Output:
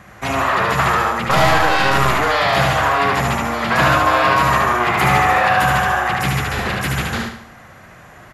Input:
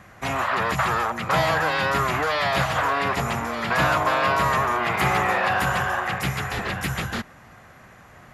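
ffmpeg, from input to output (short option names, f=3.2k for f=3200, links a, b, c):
-filter_complex "[0:a]asettb=1/sr,asplit=3[a][b][c];[a]atrim=end=1.254[d];[b]atrim=start=1.25:end=2.18,asetpts=PTS-STARTPTS,afade=t=in:d=0.004:c=qsin,afade=t=out:st=0.926:d=0.004:c=qsin,aeval=exprs='0.355*(cos(1*acos(clip(val(0)/0.355,-1,1)))-cos(1*PI/2))+0.0398*(cos(6*acos(clip(val(0)/0.355,-1,1)))-cos(6*PI/2))':c=same[e];[c]atrim=start=2.176[f];[d][e]acrossfade=d=0.004:c1=hsin:c2=qsin[g];[g][f]acrossfade=d=0.004:c1=qsin:c2=hsin,aecho=1:1:74|148|222|296|370:0.708|0.29|0.119|0.0488|0.02,volume=4.5dB"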